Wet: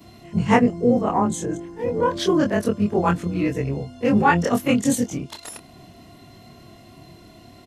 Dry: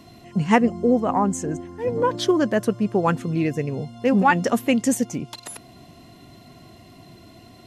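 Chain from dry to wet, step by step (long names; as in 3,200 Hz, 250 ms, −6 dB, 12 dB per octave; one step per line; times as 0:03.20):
every overlapping window played backwards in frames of 58 ms
pitch-shifted copies added −12 semitones −13 dB
level +3.5 dB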